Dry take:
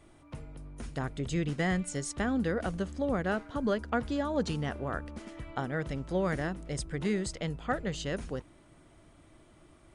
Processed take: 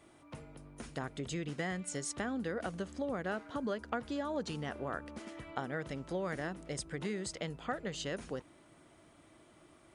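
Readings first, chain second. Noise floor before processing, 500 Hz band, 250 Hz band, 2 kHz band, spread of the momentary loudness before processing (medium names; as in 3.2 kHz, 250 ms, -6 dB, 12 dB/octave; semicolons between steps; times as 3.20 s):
-59 dBFS, -5.5 dB, -7.0 dB, -4.5 dB, 11 LU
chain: compression 3:1, threshold -33 dBFS, peak gain reduction 7.5 dB; high-pass 220 Hz 6 dB/octave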